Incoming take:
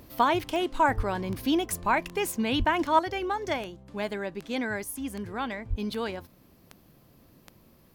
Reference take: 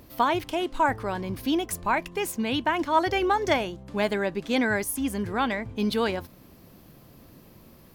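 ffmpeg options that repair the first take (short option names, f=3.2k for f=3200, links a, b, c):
-filter_complex "[0:a]adeclick=t=4,asplit=3[a][b][c];[a]afade=t=out:st=0.96:d=0.02[d];[b]highpass=f=140:w=0.5412,highpass=f=140:w=1.3066,afade=t=in:st=0.96:d=0.02,afade=t=out:st=1.08:d=0.02[e];[c]afade=t=in:st=1.08:d=0.02[f];[d][e][f]amix=inputs=3:normalize=0,asplit=3[g][h][i];[g]afade=t=out:st=2.58:d=0.02[j];[h]highpass=f=140:w=0.5412,highpass=f=140:w=1.3066,afade=t=in:st=2.58:d=0.02,afade=t=out:st=2.7:d=0.02[k];[i]afade=t=in:st=2.7:d=0.02[l];[j][k][l]amix=inputs=3:normalize=0,asplit=3[m][n][o];[m]afade=t=out:st=5.69:d=0.02[p];[n]highpass=f=140:w=0.5412,highpass=f=140:w=1.3066,afade=t=in:st=5.69:d=0.02,afade=t=out:st=5.81:d=0.02[q];[o]afade=t=in:st=5.81:d=0.02[r];[p][q][r]amix=inputs=3:normalize=0,asetnsamples=n=441:p=0,asendcmd='2.99 volume volume 6.5dB',volume=0dB"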